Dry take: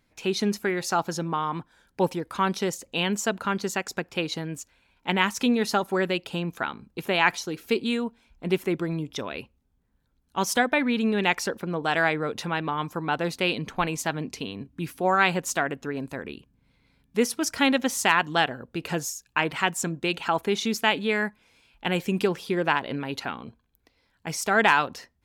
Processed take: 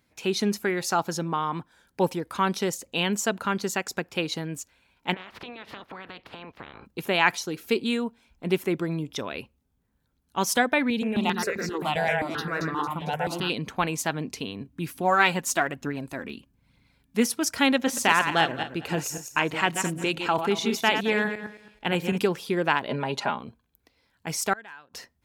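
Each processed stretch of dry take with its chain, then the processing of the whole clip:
0:05.13–0:06.85: ceiling on every frequency bin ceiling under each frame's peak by 27 dB + high-frequency loss of the air 360 metres + downward compressor 8 to 1, threshold −37 dBFS
0:10.90–0:13.50: delay that swaps between a low-pass and a high-pass 113 ms, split 1,800 Hz, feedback 68%, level −2.5 dB + step-sequenced phaser 7.6 Hz 330–3,100 Hz
0:14.96–0:17.26: parametric band 450 Hz −7.5 dB 0.21 octaves + phase shifter 1.1 Hz, delay 4.8 ms, feedback 41%
0:17.76–0:22.18: feedback delay that plays each chunk backwards 109 ms, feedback 41%, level −7 dB + high-shelf EQ 5,500 Hz −4.5 dB
0:22.88–0:23.39: loudspeaker in its box 110–9,900 Hz, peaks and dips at 130 Hz +7 dB, 610 Hz +9 dB, 940 Hz +9 dB + comb filter 4.9 ms, depth 62%
0:24.53–0:24.94: parametric band 1,600 Hz +8.5 dB 0.2 octaves + gate with flip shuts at −20 dBFS, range −28 dB
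whole clip: high-pass filter 48 Hz; high-shelf EQ 9,000 Hz +4.5 dB

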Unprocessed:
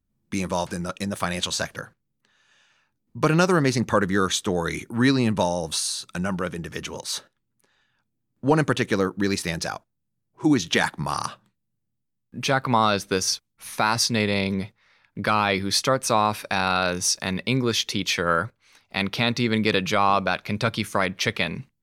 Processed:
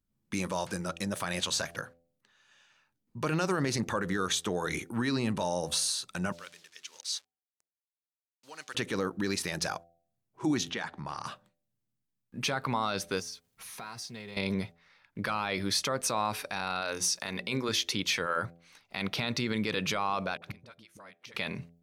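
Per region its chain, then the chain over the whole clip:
0:06.32–0:08.75: hold until the input has moved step −40.5 dBFS + resonant band-pass 5,100 Hz, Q 1.1 + shaped tremolo triangle 1.7 Hz, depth 55%
0:10.70–0:11.26: downward compressor 2 to 1, threshold −35 dBFS + high-frequency loss of the air 96 metres
0:13.20–0:14.37: mu-law and A-law mismatch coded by mu + downward compressor 3 to 1, threshold −40 dBFS + notch comb filter 290 Hz
0:16.81–0:17.69: low-shelf EQ 220 Hz −7 dB + mains-hum notches 60/120/180/240/300/360/420/480 Hz
0:20.37–0:21.34: high-pass filter 100 Hz 6 dB per octave + all-pass dispersion highs, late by 52 ms, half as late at 410 Hz + gate with flip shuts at −22 dBFS, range −25 dB
whole clip: brickwall limiter −16 dBFS; low-shelf EQ 340 Hz −3.5 dB; hum removal 84.75 Hz, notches 9; level −2.5 dB

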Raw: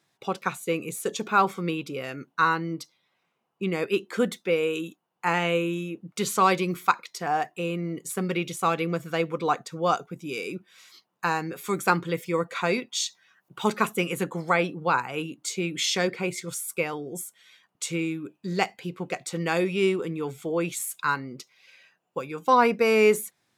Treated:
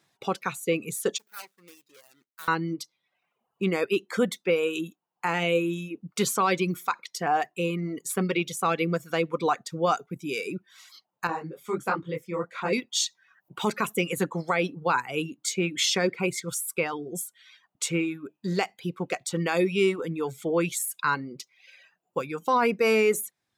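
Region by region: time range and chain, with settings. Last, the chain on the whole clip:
0:01.18–0:02.48: running median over 41 samples + first difference
0:11.27–0:12.73: high-shelf EQ 2,400 Hz −11 dB + micro pitch shift up and down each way 50 cents
whole clip: reverb reduction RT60 0.79 s; brickwall limiter −16 dBFS; level +2.5 dB

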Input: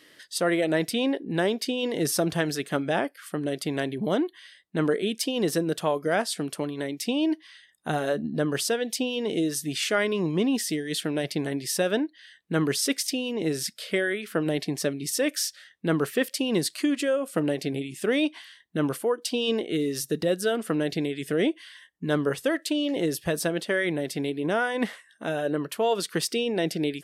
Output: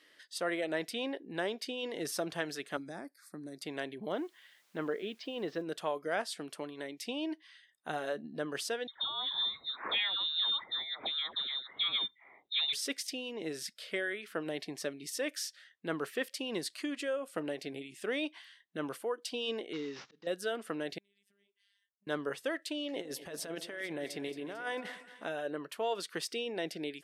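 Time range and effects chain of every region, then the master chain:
0:02.77–0:03.62: Butterworth band-reject 3,000 Hz, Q 1.4 + flat-topped bell 960 Hz −11.5 dB 2.8 octaves + multiband upward and downward compressor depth 40%
0:04.12–0:05.62: low-pass filter 4,500 Hz 24 dB per octave + high-shelf EQ 2,700 Hz −6 dB + bit-depth reduction 10 bits, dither triangular
0:08.87–0:12.73: notch filter 1,300 Hz, Q 13 + voice inversion scrambler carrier 3,900 Hz + all-pass dispersion lows, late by 97 ms, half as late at 1,100 Hz
0:19.73–0:20.27: variable-slope delta modulation 32 kbit/s + volume swells 488 ms + parametric band 640 Hz −6.5 dB 0.37 octaves
0:20.98–0:22.07: guitar amp tone stack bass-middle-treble 6-0-2 + downward compressor 10 to 1, threshold −56 dBFS + phases set to zero 200 Hz
0:22.93–0:25.29: compressor whose output falls as the input rises −28 dBFS, ratio −0.5 + echo with a time of its own for lows and highs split 820 Hz, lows 115 ms, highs 223 ms, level −13 dB
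whole clip: high-pass filter 560 Hz 6 dB per octave; high-shelf EQ 6,700 Hz −8.5 dB; level −6.5 dB

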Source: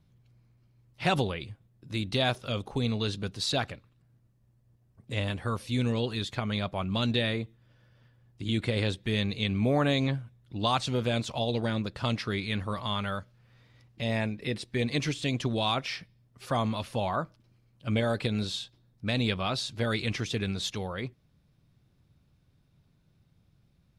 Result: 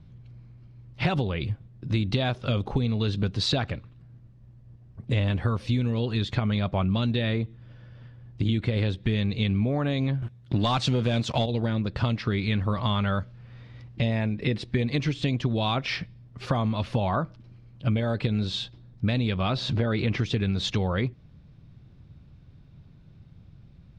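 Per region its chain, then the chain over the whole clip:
0:10.22–0:11.46: high-pass filter 78 Hz + high-shelf EQ 5,100 Hz +9.5 dB + leveller curve on the samples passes 2
0:19.56–0:20.18: high-pass filter 750 Hz 6 dB per octave + spectral tilt −4 dB per octave + envelope flattener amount 50%
whole clip: low-pass filter 4,400 Hz 12 dB per octave; low-shelf EQ 260 Hz +8 dB; downward compressor 10 to 1, threshold −30 dBFS; level +8.5 dB

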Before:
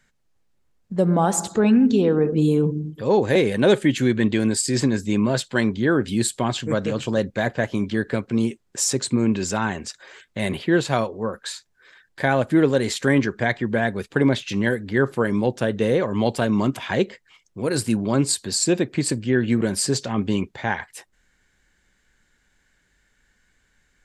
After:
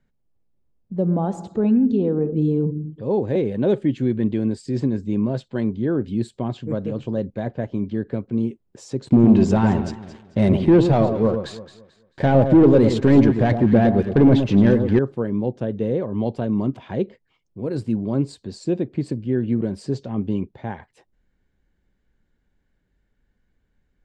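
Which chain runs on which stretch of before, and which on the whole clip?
0:09.07–0:14.99: leveller curve on the samples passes 3 + delay that swaps between a low-pass and a high-pass 110 ms, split 1,200 Hz, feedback 52%, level −7 dB
whole clip: low-pass filter 2,300 Hz 12 dB per octave; parametric band 1,700 Hz −14.5 dB 2.1 octaves

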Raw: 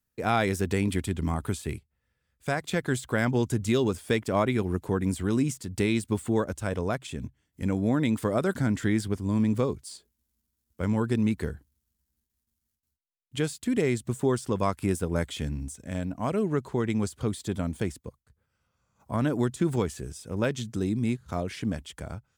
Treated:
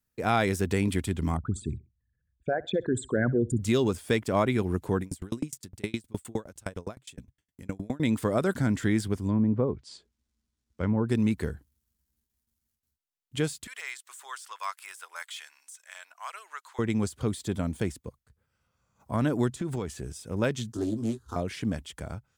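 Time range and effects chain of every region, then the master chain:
0:01.37–0:03.59: spectral envelope exaggerated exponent 3 + low-pass that shuts in the quiet parts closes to 1,700 Hz, open at −24 dBFS + repeating echo 65 ms, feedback 31%, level −21.5 dB
0:05.01–0:08.00: high-shelf EQ 3,700 Hz +6 dB + tremolo with a ramp in dB decaying 9.7 Hz, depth 34 dB
0:09.28–0:11.09: low-pass filter 6,500 Hz + treble cut that deepens with the level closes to 900 Hz, closed at −21 dBFS
0:13.67–0:16.79: inverse Chebyshev high-pass filter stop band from 180 Hz, stop band 80 dB + de-essing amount 90%
0:19.49–0:20.11: high-shelf EQ 8,600 Hz −4.5 dB + downward compressor 4 to 1, threshold −28 dBFS
0:20.72–0:21.36: phaser with its sweep stopped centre 600 Hz, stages 6 + double-tracking delay 18 ms −5 dB + highs frequency-modulated by the lows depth 0.25 ms
whole clip: no processing

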